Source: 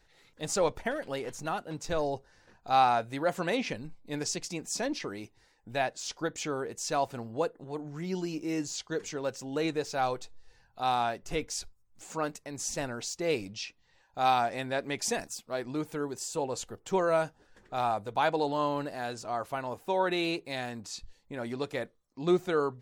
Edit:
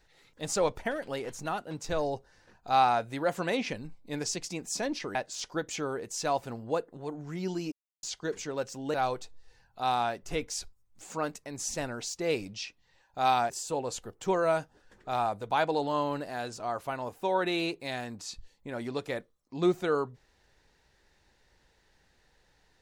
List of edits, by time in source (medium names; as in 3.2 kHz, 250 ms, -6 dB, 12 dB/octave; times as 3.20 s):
5.15–5.82 s: delete
8.39–8.70 s: mute
9.61–9.94 s: delete
14.50–16.15 s: delete